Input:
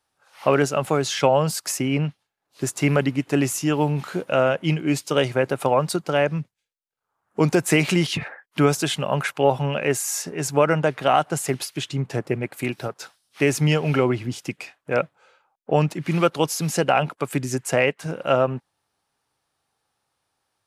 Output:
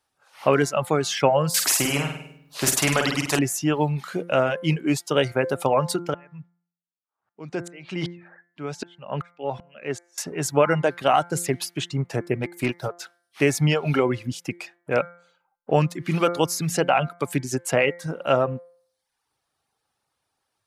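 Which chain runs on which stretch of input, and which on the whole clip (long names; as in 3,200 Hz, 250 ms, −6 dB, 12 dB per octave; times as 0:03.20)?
0:01.54–0:03.39: flutter between parallel walls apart 8.6 metres, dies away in 0.65 s + every bin compressed towards the loudest bin 2 to 1
0:06.14–0:10.18: band-pass filter 110–4,500 Hz + tremolo with a ramp in dB swelling 2.6 Hz, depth 31 dB
0:12.39–0:12.97: leveller curve on the samples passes 1 + expander for the loud parts, over −41 dBFS
whole clip: reverb reduction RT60 0.71 s; hum removal 173.4 Hz, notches 13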